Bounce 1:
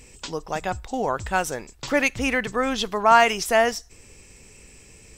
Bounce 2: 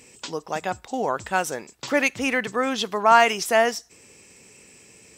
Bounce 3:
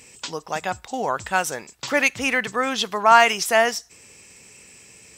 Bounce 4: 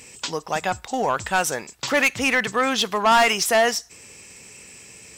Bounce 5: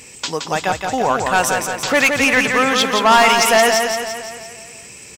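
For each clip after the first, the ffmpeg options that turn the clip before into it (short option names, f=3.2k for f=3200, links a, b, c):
-af "highpass=160"
-af "equalizer=f=330:w=0.65:g=-6,volume=3.5dB"
-af "asoftclip=type=tanh:threshold=-15dB,volume=3.5dB"
-af "aecho=1:1:171|342|513|684|855|1026|1197:0.562|0.315|0.176|0.0988|0.0553|0.031|0.0173,volume=4.5dB"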